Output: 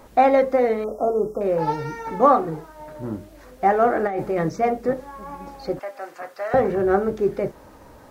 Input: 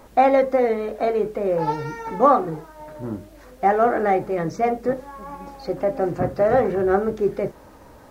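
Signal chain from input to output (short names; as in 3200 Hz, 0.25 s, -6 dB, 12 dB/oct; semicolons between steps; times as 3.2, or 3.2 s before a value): 0.84–1.41 brick-wall FIR band-stop 1400–5000 Hz; 4.07–4.49 negative-ratio compressor -23 dBFS, ratio -1; 5.79–6.54 HPF 1100 Hz 12 dB/oct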